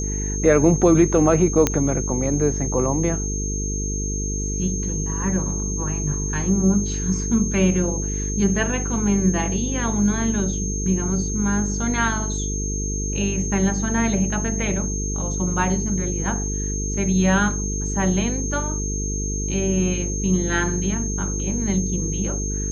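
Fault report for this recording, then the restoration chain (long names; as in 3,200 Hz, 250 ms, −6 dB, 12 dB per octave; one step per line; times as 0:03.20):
mains buzz 50 Hz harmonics 9 −26 dBFS
whistle 6,400 Hz −28 dBFS
0:01.67: click −3 dBFS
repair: click removal
notch filter 6,400 Hz, Q 30
hum removal 50 Hz, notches 9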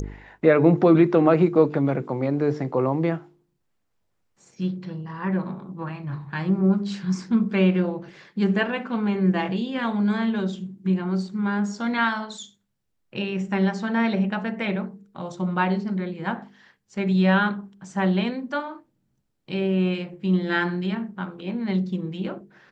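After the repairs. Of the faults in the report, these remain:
none of them is left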